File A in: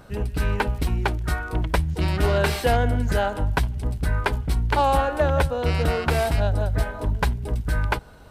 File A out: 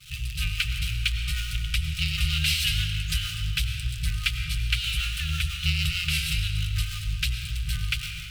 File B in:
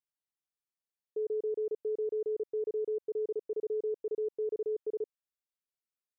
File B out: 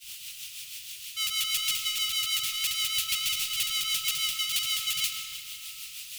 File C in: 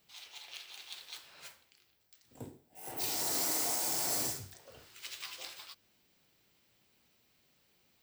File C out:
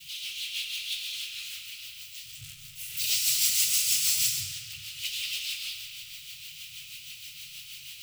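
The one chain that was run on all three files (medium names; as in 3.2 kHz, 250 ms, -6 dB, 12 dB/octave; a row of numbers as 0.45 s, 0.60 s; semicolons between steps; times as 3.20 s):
jump at every zero crossing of -29.5 dBFS; expander -29 dBFS; FFT band-reject 170–1200 Hz; resonant high shelf 2.1 kHz +9.5 dB, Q 3; rotary cabinet horn 6.3 Hz; algorithmic reverb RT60 2.5 s, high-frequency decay 0.7×, pre-delay 60 ms, DRR 5 dB; normalise loudness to -27 LUFS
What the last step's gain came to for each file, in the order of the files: -5.5 dB, +6.5 dB, -3.0 dB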